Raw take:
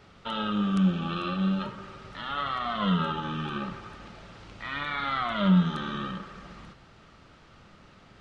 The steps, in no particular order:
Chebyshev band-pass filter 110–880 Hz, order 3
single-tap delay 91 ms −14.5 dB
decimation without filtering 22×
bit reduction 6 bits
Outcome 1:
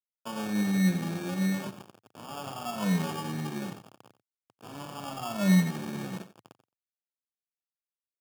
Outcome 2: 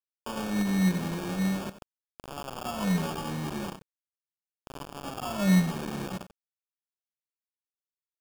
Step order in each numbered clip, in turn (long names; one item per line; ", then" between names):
bit reduction, then Chebyshev band-pass filter, then decimation without filtering, then single-tap delay
Chebyshev band-pass filter, then bit reduction, then single-tap delay, then decimation without filtering